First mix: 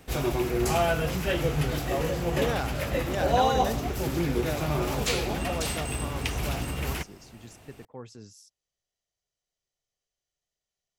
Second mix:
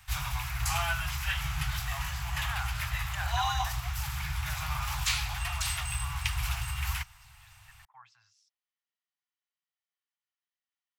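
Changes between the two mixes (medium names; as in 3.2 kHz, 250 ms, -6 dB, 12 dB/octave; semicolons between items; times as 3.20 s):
speech: add band-pass 430–2600 Hz; master: add inverse Chebyshev band-stop 210–510 Hz, stop band 50 dB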